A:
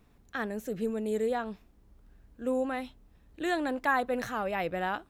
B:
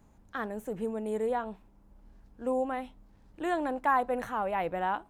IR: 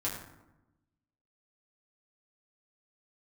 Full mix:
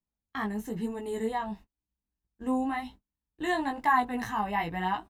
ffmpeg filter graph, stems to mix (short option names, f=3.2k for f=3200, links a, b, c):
-filter_complex "[0:a]volume=1.5dB[a];[1:a]adelay=1.1,volume=3dB[b];[a][b]amix=inputs=2:normalize=0,agate=range=-34dB:threshold=-43dB:ratio=16:detection=peak,flanger=delay=16:depth=3.4:speed=1"